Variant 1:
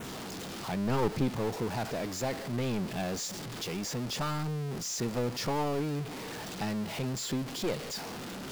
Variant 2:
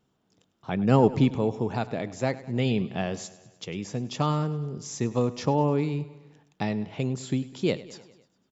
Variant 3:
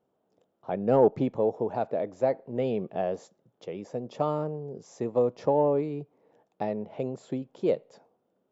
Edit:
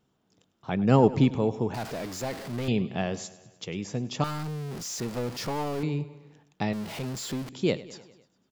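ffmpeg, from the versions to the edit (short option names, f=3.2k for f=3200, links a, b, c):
-filter_complex "[0:a]asplit=3[a][b][c];[1:a]asplit=4[d][e][f][g];[d]atrim=end=1.742[h];[a]atrim=start=1.738:end=2.682[i];[e]atrim=start=2.678:end=4.242[j];[b]atrim=start=4.238:end=5.832[k];[f]atrim=start=5.828:end=6.732[l];[c]atrim=start=6.728:end=7.492[m];[g]atrim=start=7.488[n];[h][i]acrossfade=d=0.004:c1=hsin:c2=hsin[o];[o][j]acrossfade=d=0.004:c1=hsin:c2=hsin[p];[p][k]acrossfade=d=0.004:c1=hsin:c2=hsin[q];[q][l]acrossfade=d=0.004:c1=hsin:c2=hsin[r];[r][m]acrossfade=d=0.004:c1=hsin:c2=hsin[s];[s][n]acrossfade=d=0.004:c1=hsin:c2=hsin"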